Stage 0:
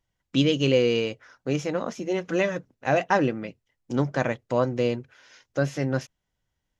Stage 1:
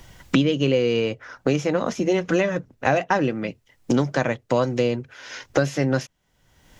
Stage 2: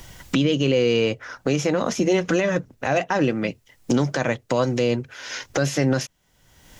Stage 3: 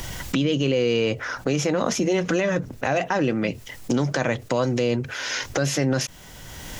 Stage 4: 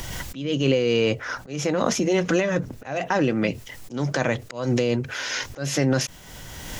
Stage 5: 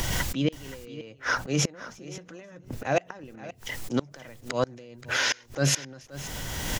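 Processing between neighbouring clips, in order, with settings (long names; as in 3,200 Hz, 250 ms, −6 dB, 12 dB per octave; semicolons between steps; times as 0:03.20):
multiband upward and downward compressor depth 100%; level +2.5 dB
high-shelf EQ 4,500 Hz +6 dB; brickwall limiter −13.5 dBFS, peak gain reduction 10 dB; level +3 dB
envelope flattener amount 50%; level −3 dB
volume swells 209 ms; amplitude modulation by smooth noise, depth 55%; level +3.5 dB
gate with flip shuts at −17 dBFS, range −29 dB; single-tap delay 526 ms −16.5 dB; level +5 dB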